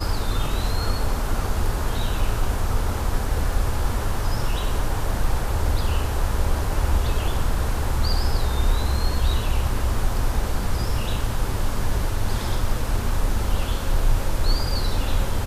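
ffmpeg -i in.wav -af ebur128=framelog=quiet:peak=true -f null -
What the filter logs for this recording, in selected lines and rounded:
Integrated loudness:
  I:         -25.8 LUFS
  Threshold: -35.8 LUFS
Loudness range:
  LRA:         1.9 LU
  Threshold: -45.8 LUFS
  LRA low:   -26.6 LUFS
  LRA high:  -24.7 LUFS
True peak:
  Peak:       -8.0 dBFS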